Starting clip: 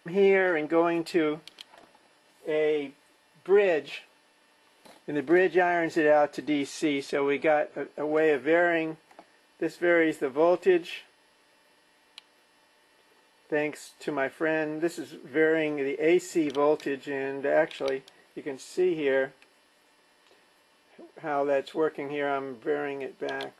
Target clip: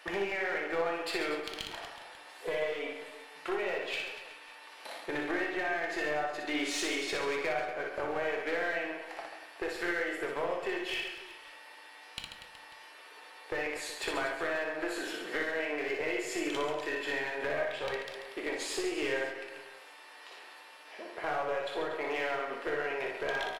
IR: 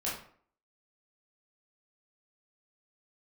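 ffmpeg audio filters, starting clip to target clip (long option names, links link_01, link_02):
-filter_complex "[0:a]highpass=430,equalizer=frequency=1800:width=0.37:gain=7.5,acompressor=threshold=-34dB:ratio=16,aeval=exprs='clip(val(0),-1,0.0178)':channel_layout=same,aecho=1:1:60|138|239.4|371.2|542.6:0.631|0.398|0.251|0.158|0.1,asplit=2[link_01][link_02];[1:a]atrim=start_sample=2205[link_03];[link_02][link_03]afir=irnorm=-1:irlink=0,volume=-7dB[link_04];[link_01][link_04]amix=inputs=2:normalize=0"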